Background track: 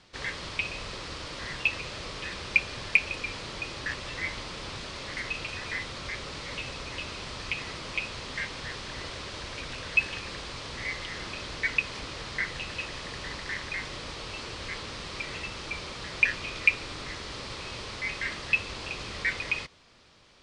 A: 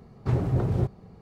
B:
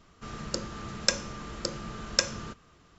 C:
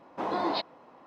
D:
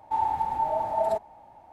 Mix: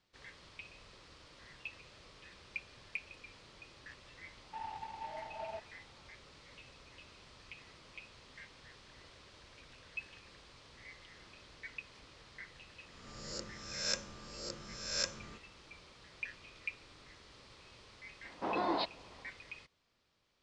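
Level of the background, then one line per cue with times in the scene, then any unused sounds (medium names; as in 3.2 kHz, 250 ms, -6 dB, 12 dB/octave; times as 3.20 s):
background track -19.5 dB
4.42 s: add D -18 dB + CVSD coder 16 kbps
12.85 s: add B -14.5 dB + reverse spectral sustain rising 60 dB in 0.87 s
18.24 s: add C -4.5 dB + steep low-pass 5.9 kHz
not used: A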